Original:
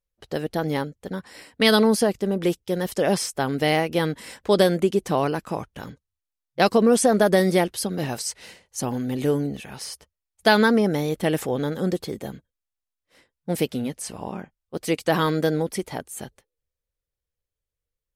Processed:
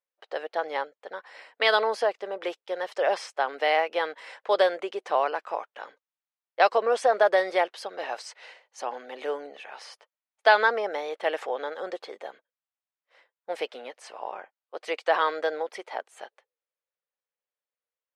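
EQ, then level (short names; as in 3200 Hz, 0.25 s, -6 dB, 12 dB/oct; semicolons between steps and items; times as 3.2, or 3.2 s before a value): HPF 560 Hz 24 dB/oct; Bessel low-pass 2300 Hz, order 2; +1.5 dB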